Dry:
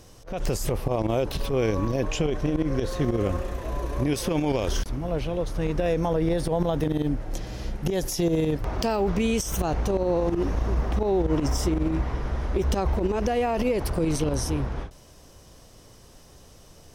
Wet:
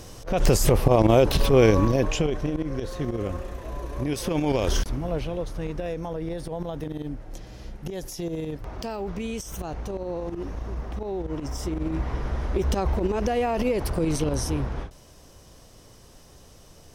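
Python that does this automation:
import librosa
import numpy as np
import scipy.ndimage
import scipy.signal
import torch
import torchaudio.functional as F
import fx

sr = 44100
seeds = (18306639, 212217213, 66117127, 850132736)

y = fx.gain(x, sr, db=fx.line((1.64, 7.5), (2.67, -4.0), (3.93, -4.0), (4.74, 3.0), (6.0, -7.5), (11.47, -7.5), (12.15, 0.0)))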